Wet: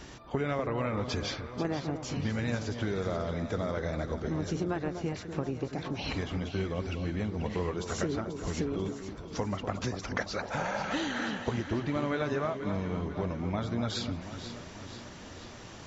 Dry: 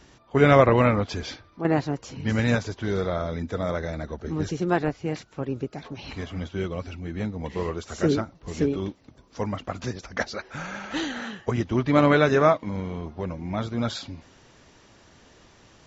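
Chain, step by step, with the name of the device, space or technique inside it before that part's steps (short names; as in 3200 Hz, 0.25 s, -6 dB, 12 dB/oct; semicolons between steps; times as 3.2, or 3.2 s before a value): 10.4–10.83 band shelf 700 Hz +9.5 dB 1.2 oct; serial compression, leveller first (compressor 2.5:1, threshold -24 dBFS, peak gain reduction 9.5 dB; compressor 4:1, threshold -37 dBFS, peak gain reduction 15 dB); echo with dull and thin repeats by turns 0.244 s, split 1200 Hz, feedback 75%, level -8 dB; gain +6 dB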